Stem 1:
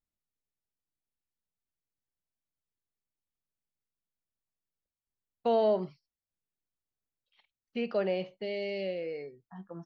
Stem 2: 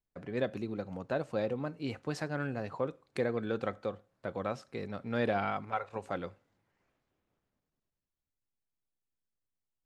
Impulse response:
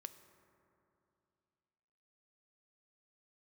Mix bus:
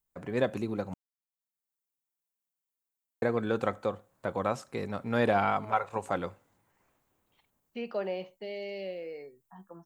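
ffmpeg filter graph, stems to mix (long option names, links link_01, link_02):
-filter_complex "[0:a]highpass=170,volume=-8dB[link_01];[1:a]volume=0dB,asplit=3[link_02][link_03][link_04];[link_02]atrim=end=0.94,asetpts=PTS-STARTPTS,afade=type=out:start_time=0.936:duration=0.004:curve=hsin[link_05];[link_03]atrim=start=0.94:end=3.22,asetpts=PTS-STARTPTS,volume=0[link_06];[link_04]atrim=start=3.22,asetpts=PTS-STARTPTS,afade=type=in:duration=0.004:curve=hsin[link_07];[link_05][link_06][link_07]concat=n=3:v=0:a=1,asplit=2[link_08][link_09];[link_09]apad=whole_len=434595[link_10];[link_01][link_10]sidechaincompress=threshold=-49dB:ratio=8:attack=16:release=747[link_11];[link_11][link_08]amix=inputs=2:normalize=0,equalizer=frequency=950:width=2.2:gain=5.5,dynaudnorm=framelen=130:gausssize=3:maxgain=4dB,aexciter=amount=2.3:drive=7:freq=6700"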